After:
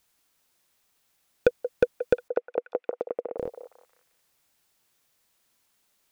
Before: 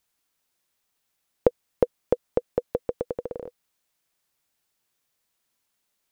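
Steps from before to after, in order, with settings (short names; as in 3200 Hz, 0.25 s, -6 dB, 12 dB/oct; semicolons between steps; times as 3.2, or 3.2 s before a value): 2.28–3.38 speaker cabinet 490–2200 Hz, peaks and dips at 510 Hz -5 dB, 980 Hz -6 dB, 1600 Hz -10 dB; soft clip -16 dBFS, distortion -7 dB; delay with a stepping band-pass 0.179 s, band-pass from 640 Hz, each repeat 0.7 oct, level -9.5 dB; gain +6 dB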